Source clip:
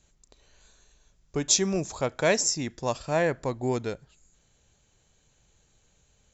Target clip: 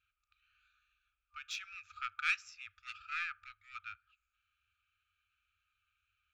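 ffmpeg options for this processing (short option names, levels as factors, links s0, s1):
-filter_complex "[0:a]asplit=3[s0][s1][s2];[s0]bandpass=f=730:t=q:w=8,volume=1[s3];[s1]bandpass=f=1090:t=q:w=8,volume=0.501[s4];[s2]bandpass=f=2440:t=q:w=8,volume=0.355[s5];[s3][s4][s5]amix=inputs=3:normalize=0,adynamicsmooth=sensitivity=5.5:basefreq=2500,afftfilt=real='re*(1-between(b*sr/4096,100,1200))':imag='im*(1-between(b*sr/4096,100,1200))':win_size=4096:overlap=0.75,volume=4.73"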